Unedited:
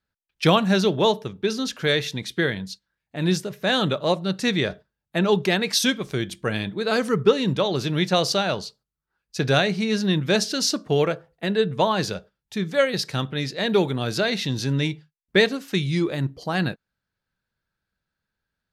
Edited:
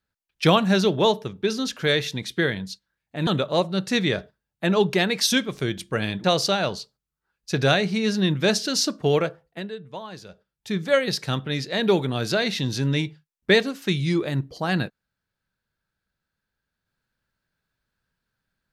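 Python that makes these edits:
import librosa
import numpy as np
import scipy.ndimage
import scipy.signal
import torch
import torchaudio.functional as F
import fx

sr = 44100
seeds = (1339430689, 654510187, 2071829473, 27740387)

y = fx.edit(x, sr, fx.cut(start_s=3.27, length_s=0.52),
    fx.cut(start_s=6.76, length_s=1.34),
    fx.fade_down_up(start_s=11.14, length_s=1.44, db=-15.5, fade_s=0.47), tone=tone)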